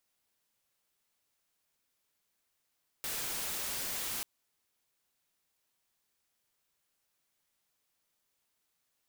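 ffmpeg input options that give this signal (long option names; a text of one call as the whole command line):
ffmpeg -f lavfi -i "anoisesrc=color=white:amplitude=0.0245:duration=1.19:sample_rate=44100:seed=1" out.wav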